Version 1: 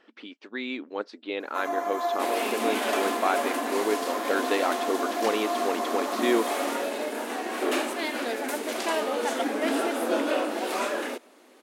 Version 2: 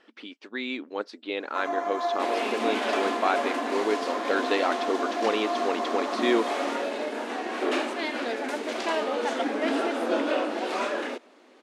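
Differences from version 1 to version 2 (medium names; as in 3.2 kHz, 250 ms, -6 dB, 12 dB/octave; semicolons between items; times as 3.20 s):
speech: remove distance through air 120 m; master: add low-pass 5.4 kHz 12 dB/octave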